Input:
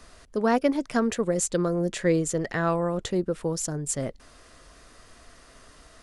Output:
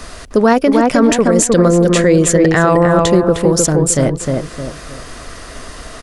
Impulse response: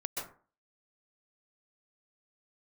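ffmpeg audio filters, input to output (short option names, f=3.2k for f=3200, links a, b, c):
-filter_complex "[0:a]asplit=2[a][b];[b]adelay=308,lowpass=f=1.8k:p=1,volume=-4dB,asplit=2[c][d];[d]adelay=308,lowpass=f=1.8k:p=1,volume=0.33,asplit=2[e][f];[f]adelay=308,lowpass=f=1.8k:p=1,volume=0.33,asplit=2[g][h];[h]adelay=308,lowpass=f=1.8k:p=1,volume=0.33[i];[a][c][e][g][i]amix=inputs=5:normalize=0,asplit=2[j][k];[k]acompressor=threshold=-35dB:ratio=6,volume=-2dB[l];[j][l]amix=inputs=2:normalize=0,alimiter=level_in=15dB:limit=-1dB:release=50:level=0:latency=1,volume=-1dB"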